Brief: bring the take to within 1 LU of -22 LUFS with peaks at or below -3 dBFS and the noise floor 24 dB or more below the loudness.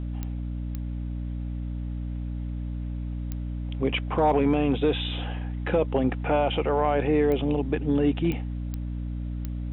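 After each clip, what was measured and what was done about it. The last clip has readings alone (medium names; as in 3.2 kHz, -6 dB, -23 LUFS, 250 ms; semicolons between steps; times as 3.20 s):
clicks found 7; hum 60 Hz; highest harmonic 300 Hz; hum level -29 dBFS; loudness -27.5 LUFS; peak level -12.0 dBFS; loudness target -22.0 LUFS
-> de-click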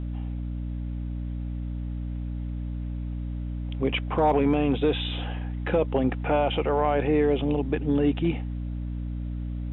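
clicks found 0; hum 60 Hz; highest harmonic 300 Hz; hum level -29 dBFS
-> hum notches 60/120/180/240/300 Hz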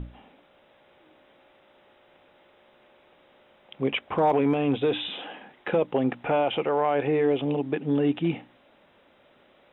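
hum not found; loudness -26.0 LUFS; peak level -13.0 dBFS; loudness target -22.0 LUFS
-> trim +4 dB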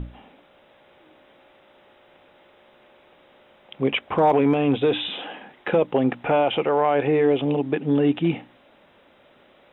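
loudness -22.0 LUFS; peak level -9.0 dBFS; noise floor -56 dBFS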